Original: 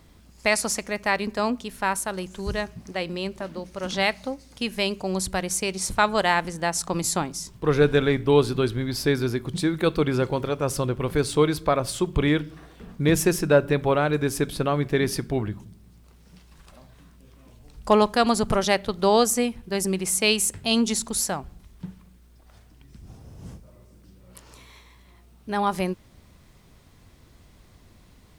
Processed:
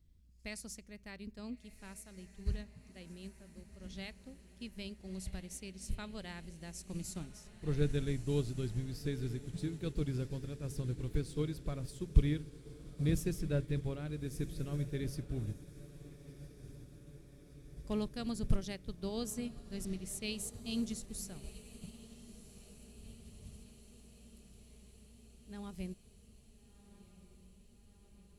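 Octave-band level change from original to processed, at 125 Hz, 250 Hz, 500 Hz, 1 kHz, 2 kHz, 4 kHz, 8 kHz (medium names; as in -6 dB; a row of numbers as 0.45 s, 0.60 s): -8.5 dB, -14.0 dB, -20.5 dB, -29.5 dB, -23.5 dB, -20.0 dB, -19.5 dB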